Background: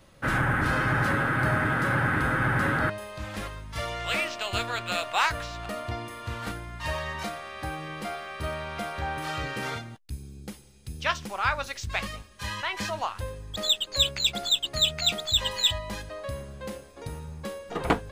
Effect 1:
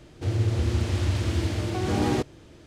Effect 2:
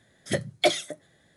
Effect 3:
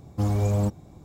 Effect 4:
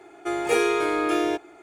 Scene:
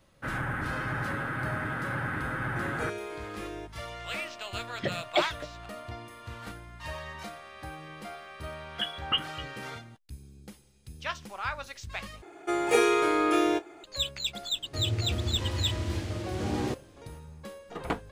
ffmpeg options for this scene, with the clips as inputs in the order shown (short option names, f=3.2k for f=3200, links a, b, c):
-filter_complex "[4:a]asplit=2[a][b];[2:a]asplit=2[c][d];[0:a]volume=-7.5dB[e];[c]lowpass=f=4.4k:w=0.5412,lowpass=f=4.4k:w=1.3066[f];[d]lowpass=f=3k:t=q:w=0.5098,lowpass=f=3k:t=q:w=0.6013,lowpass=f=3k:t=q:w=0.9,lowpass=f=3k:t=q:w=2.563,afreqshift=-3500[g];[b]asplit=2[h][i];[i]adelay=25,volume=-14dB[j];[h][j]amix=inputs=2:normalize=0[k];[e]asplit=2[l][m];[l]atrim=end=12.224[n];[k]atrim=end=1.62,asetpts=PTS-STARTPTS,volume=-1dB[o];[m]atrim=start=13.836[p];[a]atrim=end=1.62,asetpts=PTS-STARTPTS,volume=-16.5dB,afade=t=in:d=0.004:c=hsin,afade=t=out:st=1.616:d=0.004:c=hsin,adelay=2300[q];[f]atrim=end=1.36,asetpts=PTS-STARTPTS,volume=-4.5dB,afade=t=in:d=0.004:c=hsin,afade=t=out:st=1.356:d=0.004:c=hsin,adelay=4520[r];[g]atrim=end=1.36,asetpts=PTS-STARTPTS,volume=-6dB,afade=t=in:d=0.004:c=hsin,afade=t=out:st=1.356:d=0.004:c=hsin,adelay=8480[s];[1:a]atrim=end=2.66,asetpts=PTS-STARTPTS,volume=-6.5dB,afade=t=in:d=0.004:c=hsin,afade=t=out:st=2.656:d=0.004:c=hsin,adelay=14520[t];[n][o]acrossfade=d=0.004:c1=hsin:c2=hsin[u];[u][p]acrossfade=d=0.004:c1=hsin:c2=hsin[v];[v][q][r][s][t]amix=inputs=5:normalize=0"